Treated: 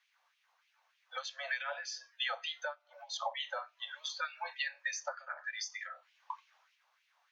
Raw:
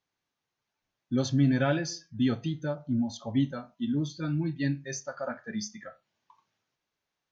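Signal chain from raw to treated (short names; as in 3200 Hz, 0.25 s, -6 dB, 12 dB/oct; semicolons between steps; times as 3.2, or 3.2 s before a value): Chebyshev high-pass 490 Hz, order 10; high shelf 3700 Hz -9 dB; compressor 5:1, threshold -50 dBFS, peak gain reduction 21.5 dB; LFO high-pass sine 3.3 Hz 810–2600 Hz; 3.27–3.88 doubler 43 ms -13 dB; gain +12 dB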